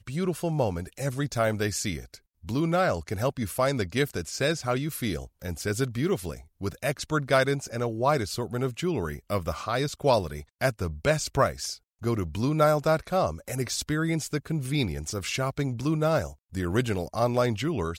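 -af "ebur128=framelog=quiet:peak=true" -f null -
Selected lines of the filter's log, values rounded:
Integrated loudness:
  I:         -27.9 LUFS
  Threshold: -38.0 LUFS
Loudness range:
  LRA:         2.1 LU
  Threshold: -47.9 LUFS
  LRA low:   -28.8 LUFS
  LRA high:  -26.6 LUFS
True peak:
  Peak:       -8.8 dBFS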